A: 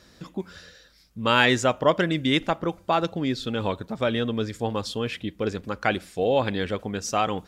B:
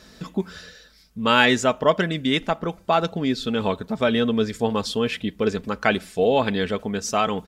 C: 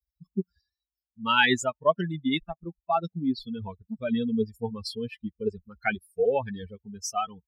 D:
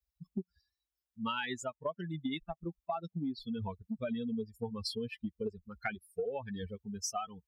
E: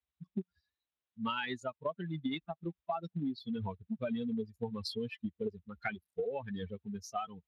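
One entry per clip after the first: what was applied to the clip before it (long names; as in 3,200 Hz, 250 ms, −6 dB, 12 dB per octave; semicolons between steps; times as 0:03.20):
comb filter 4.6 ms, depth 41%; speech leveller within 4 dB 2 s; level +1 dB
spectral dynamics exaggerated over time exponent 3
downward compressor 16 to 1, threshold −33 dBFS, peak gain reduction 18.5 dB
Speex 28 kbit/s 32,000 Hz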